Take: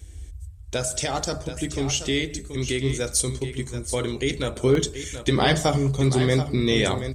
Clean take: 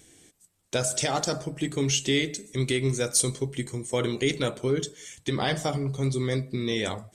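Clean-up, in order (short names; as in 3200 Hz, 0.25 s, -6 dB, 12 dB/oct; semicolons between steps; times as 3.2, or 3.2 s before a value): interpolate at 4.75, 1.9 ms; noise print and reduce 18 dB; inverse comb 0.73 s -10.5 dB; gain 0 dB, from 4.56 s -6.5 dB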